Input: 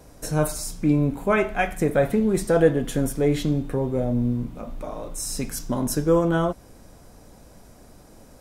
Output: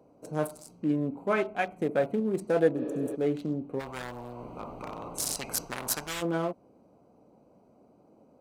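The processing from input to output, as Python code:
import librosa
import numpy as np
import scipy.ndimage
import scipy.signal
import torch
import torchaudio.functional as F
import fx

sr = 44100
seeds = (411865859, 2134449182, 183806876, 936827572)

y = fx.wiener(x, sr, points=25)
y = fx.spec_repair(y, sr, seeds[0], start_s=2.79, length_s=0.34, low_hz=280.0, high_hz=5600.0, source='before')
y = scipy.signal.sosfilt(scipy.signal.butter(2, 210.0, 'highpass', fs=sr, output='sos'), y)
y = fx.spectral_comp(y, sr, ratio=10.0, at=(3.79, 6.21), fade=0.02)
y = y * librosa.db_to_amplitude(-5.5)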